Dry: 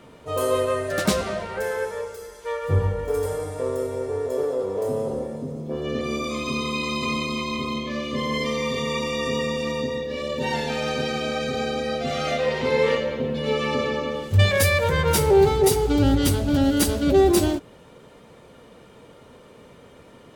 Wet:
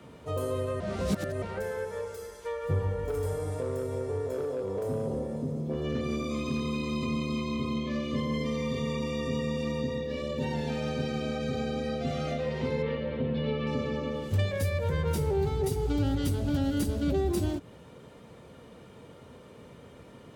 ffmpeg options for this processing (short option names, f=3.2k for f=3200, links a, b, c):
-filter_complex "[0:a]asettb=1/sr,asplit=3[a][b][c];[a]atrim=end=3.034[d];[b]atrim=start=3.03:end=6.95,asetpts=PTS-STARTPTS,afade=t=in:d=0.004:c=qsin,afade=t=out:st=3.916:d=0.004:c=qsin,volume=19.5dB,asoftclip=hard,volume=-19.5dB[e];[c]atrim=start=6.946[f];[d][e]acrossfade=d=0.004:c1=hsin:c2=qsin[g];[g][f]acrossfade=d=0.004:c1=qsin:c2=hsin,asettb=1/sr,asplit=3[h][i][j];[h]atrim=end=12.824[k];[i]atrim=start=12.82:end=13.67,asetpts=PTS-STARTPTS,afade=t=in:d=0.004:c=qsin,afade=t=out:st=0.846:d=0.004:c=qsin,lowpass=f=4k:w=0.5412,lowpass=f=4k:w=1.3066[l];[j]atrim=start=13.666[m];[k][l]acrossfade=d=0.004:c1=hsin:c2=qsin[n];[n][m]acrossfade=d=0.004:c1=qsin:c2=hsin,asplit=3[o][p][q];[o]atrim=end=0.802[r];[p]atrim=start=0.798:end=1.422,asetpts=PTS-STARTPTS,areverse[s];[q]atrim=start=1.418[t];[r][s]acrossfade=d=0.004:c1=hsin:c2=hsin[u];[u][t]acrossfade=d=0.004:c1=hsin:c2=hsin,highpass=64,lowshelf=f=180:g=8.5,acrossover=split=250|590[v][w][x];[v]acompressor=threshold=-24dB:ratio=4[y];[w]acompressor=threshold=-31dB:ratio=4[z];[x]acompressor=threshold=-36dB:ratio=4[aa];[y][z][aa]amix=inputs=3:normalize=0,volume=-4dB"